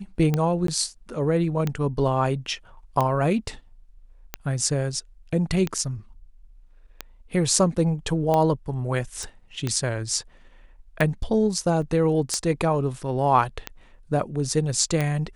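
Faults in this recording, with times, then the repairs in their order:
tick 45 rpm -11 dBFS
0.67–0.68 s: dropout 13 ms
9.23 s: pop
11.82 s: dropout 4.7 ms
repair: de-click; interpolate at 0.67 s, 13 ms; interpolate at 11.82 s, 4.7 ms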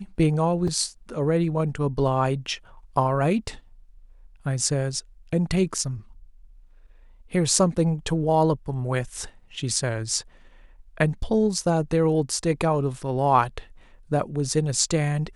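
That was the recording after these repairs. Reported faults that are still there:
nothing left

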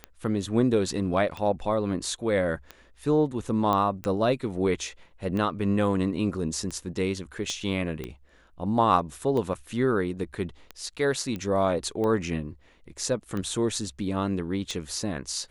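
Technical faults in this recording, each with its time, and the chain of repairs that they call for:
tick 45 rpm -20 dBFS
3.73 s: pop -14 dBFS
7.50 s: pop -20 dBFS
11.36 s: pop -21 dBFS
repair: de-click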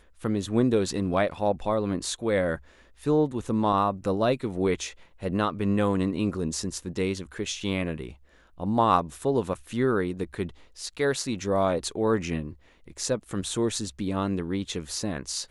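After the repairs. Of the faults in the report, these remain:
7.50 s: pop

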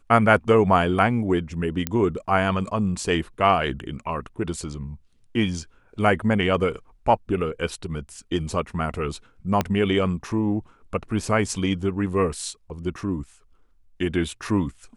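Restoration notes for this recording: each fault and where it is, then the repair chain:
1.87 s: pop -7 dBFS
9.61 s: pop -8 dBFS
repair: de-click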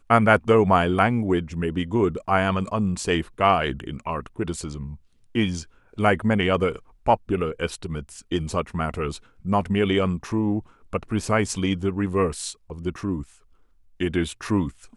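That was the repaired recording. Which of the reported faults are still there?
9.61 s: pop

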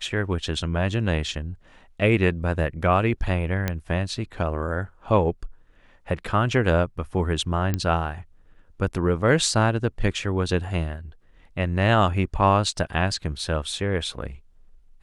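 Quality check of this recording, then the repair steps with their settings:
3.68 s: pop -10 dBFS
7.74 s: pop -11 dBFS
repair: de-click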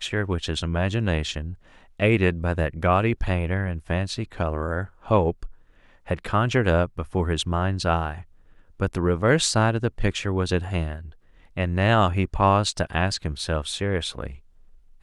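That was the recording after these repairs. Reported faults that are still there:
nothing left

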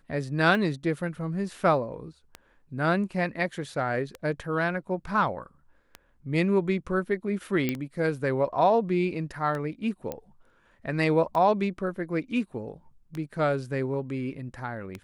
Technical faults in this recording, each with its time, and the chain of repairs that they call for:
tick 33 1/3 rpm
7.69 s: pop -13 dBFS
10.12 s: pop -19 dBFS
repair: de-click

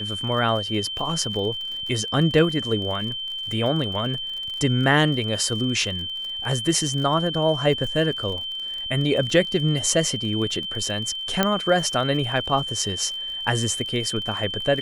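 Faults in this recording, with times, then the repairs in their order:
crackle 46 per s -31 dBFS
whine 3.1 kHz -28 dBFS
11.43 s: pop -4 dBFS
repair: de-click; band-stop 3.1 kHz, Q 30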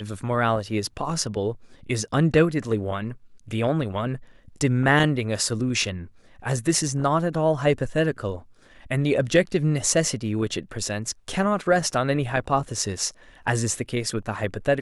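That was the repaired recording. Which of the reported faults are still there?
11.43 s: pop

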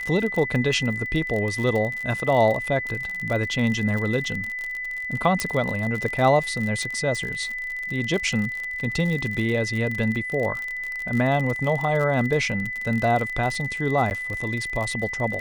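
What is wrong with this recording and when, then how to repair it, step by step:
crackle 47 per s -27 dBFS
whine 2 kHz -28 dBFS
5.40 s: pop -8 dBFS
14.10–14.11 s: dropout 9.9 ms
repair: de-click; band-stop 2 kHz, Q 30; interpolate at 14.10 s, 9.9 ms

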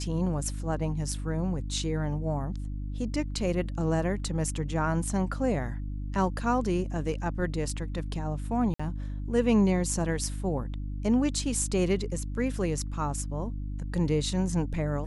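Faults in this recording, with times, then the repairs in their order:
hum 50 Hz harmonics 6 -34 dBFS
8.74–8.79 s: dropout 55 ms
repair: de-hum 50 Hz, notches 6; interpolate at 8.74 s, 55 ms

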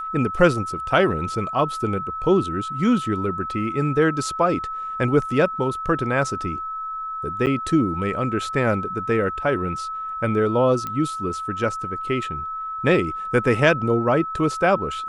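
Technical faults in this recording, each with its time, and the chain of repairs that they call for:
whine 1.3 kHz -27 dBFS
7.46–7.47 s: dropout 8.9 ms
10.87 s: pop -15 dBFS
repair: de-click; band-stop 1.3 kHz, Q 30; interpolate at 7.46 s, 8.9 ms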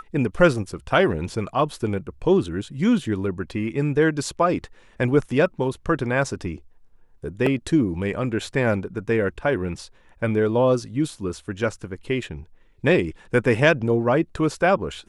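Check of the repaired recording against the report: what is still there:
nothing left

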